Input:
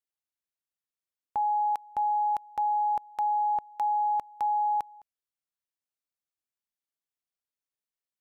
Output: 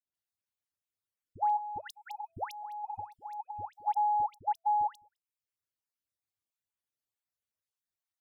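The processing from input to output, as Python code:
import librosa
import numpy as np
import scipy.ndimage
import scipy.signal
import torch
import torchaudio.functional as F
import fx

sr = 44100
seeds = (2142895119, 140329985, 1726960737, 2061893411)

y = fx.spec_dropout(x, sr, seeds[0], share_pct=26)
y = fx.dereverb_blind(y, sr, rt60_s=0.56)
y = fx.peak_eq(y, sr, hz=98.0, db=12.5, octaves=0.55)
y = fx.over_compress(y, sr, threshold_db=-35.0, ratio=-0.5, at=(1.5, 3.81))
y = fx.dispersion(y, sr, late='highs', ms=148.0, hz=920.0)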